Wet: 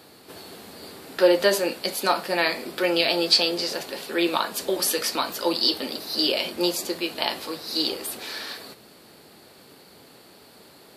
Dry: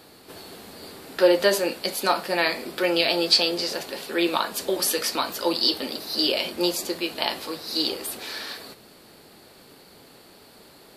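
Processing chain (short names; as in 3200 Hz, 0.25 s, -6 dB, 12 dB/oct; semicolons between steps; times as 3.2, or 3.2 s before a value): HPF 67 Hz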